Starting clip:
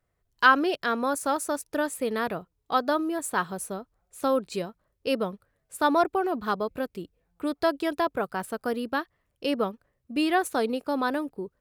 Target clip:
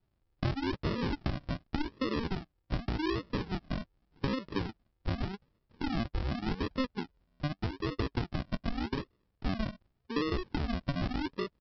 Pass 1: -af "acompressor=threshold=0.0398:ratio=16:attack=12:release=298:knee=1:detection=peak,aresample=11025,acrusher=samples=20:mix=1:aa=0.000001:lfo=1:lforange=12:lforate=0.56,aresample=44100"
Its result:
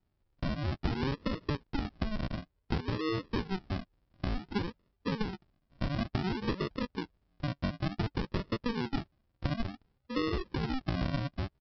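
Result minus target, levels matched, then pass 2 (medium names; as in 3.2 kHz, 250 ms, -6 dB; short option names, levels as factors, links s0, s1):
decimation with a swept rate: distortion -4 dB
-af "acompressor=threshold=0.0398:ratio=16:attack=12:release=298:knee=1:detection=peak,aresample=11025,acrusher=samples=20:mix=1:aa=0.000001:lfo=1:lforange=12:lforate=0.85,aresample=44100"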